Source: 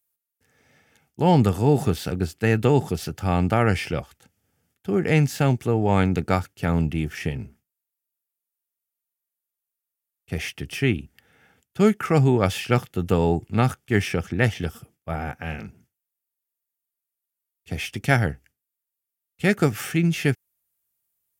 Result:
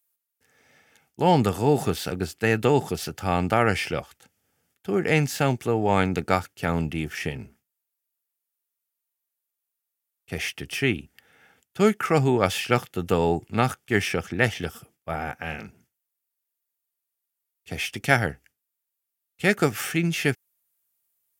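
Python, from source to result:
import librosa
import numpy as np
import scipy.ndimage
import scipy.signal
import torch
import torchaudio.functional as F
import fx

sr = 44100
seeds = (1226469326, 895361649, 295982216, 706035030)

y = fx.low_shelf(x, sr, hz=250.0, db=-9.5)
y = y * 10.0 ** (2.0 / 20.0)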